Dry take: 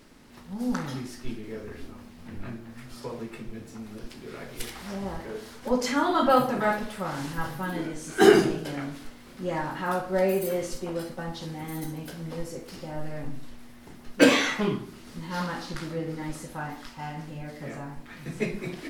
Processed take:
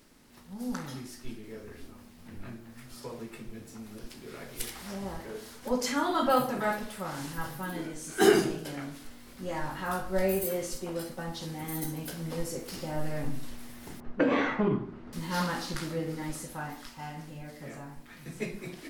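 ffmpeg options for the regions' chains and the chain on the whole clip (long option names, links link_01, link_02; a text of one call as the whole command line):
ffmpeg -i in.wav -filter_complex "[0:a]asettb=1/sr,asplit=3[link_01][link_02][link_03];[link_01]atrim=end=9.084[link_04];[link_02]atrim=start=9.08:end=10.45,asetpts=PTS-STARTPTS,afade=type=in:duration=0.004:curve=qsin,afade=type=out:start_time=1.366:duration=0.004:curve=qsin,asubboost=boost=11.5:cutoff=100,asplit=2[link_05][link_06];[link_06]adelay=21,volume=-6dB[link_07];[link_05][link_07]amix=inputs=2:normalize=0,atrim=end_sample=60417[link_08];[link_03]atrim=start=10.446[link_09];[link_04][link_08]acrossfade=duration=0.004:curve1=hsin:curve2=qsin[link_10];[link_10][link_09]acrossfade=duration=0.004:curve1=qsin:curve2=hsin,asettb=1/sr,asplit=3[link_11][link_12][link_13];[link_11]atrim=end=14.004[link_14];[link_12]atrim=start=14:end=15.13,asetpts=PTS-STARTPTS,afade=type=in:duration=0.004:curve=qsin,afade=type=out:start_time=1.126:duration=0.004:curve=qsin,lowpass=1300,acompressor=threshold=-22dB:ratio=12:attack=3.2:release=140:knee=1:detection=peak[link_15];[link_13]atrim=start=15.126[link_16];[link_14][link_15]acrossfade=duration=0.004:curve1=hsin:curve2=qsin[link_17];[link_17][link_16]acrossfade=duration=0.004:curve1=qsin:curve2=hsin,highshelf=frequency=6500:gain=9,dynaudnorm=framelen=450:gausssize=17:maxgain=11.5dB,volume=-6.5dB" out.wav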